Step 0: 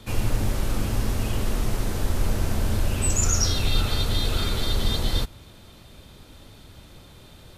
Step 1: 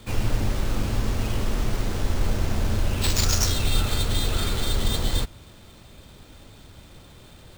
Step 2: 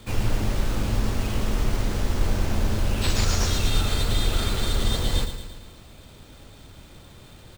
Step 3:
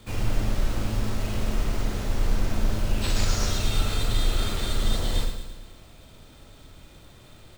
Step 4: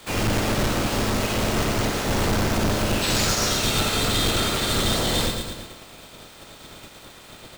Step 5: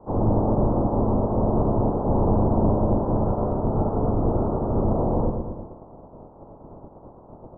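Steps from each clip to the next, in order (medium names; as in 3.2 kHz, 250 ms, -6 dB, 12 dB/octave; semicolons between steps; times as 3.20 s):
sample-rate reducer 12 kHz, jitter 20%
on a send: feedback delay 113 ms, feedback 55%, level -10 dB; on the sum: slew-rate limiter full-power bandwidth 240 Hz
reverberation RT60 0.40 s, pre-delay 10 ms, DRR 4.5 dB; trim -4 dB
spectral peaks clipped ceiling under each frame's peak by 20 dB; saturation -21 dBFS, distortion -10 dB; trim +3.5 dB
steep low-pass 990 Hz 48 dB/octave; trim +3 dB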